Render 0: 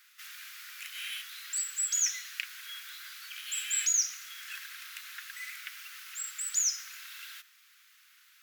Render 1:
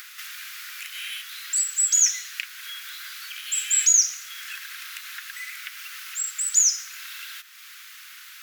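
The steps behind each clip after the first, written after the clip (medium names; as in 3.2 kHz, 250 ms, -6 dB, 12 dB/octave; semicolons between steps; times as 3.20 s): upward compressor, threshold -36 dBFS; dynamic bell 7 kHz, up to +6 dB, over -43 dBFS, Q 1.6; trim +4.5 dB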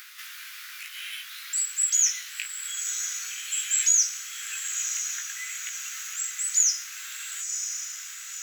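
chorus 0.66 Hz, delay 16 ms, depth 2.6 ms; echo that smears into a reverb 1013 ms, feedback 54%, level -7 dB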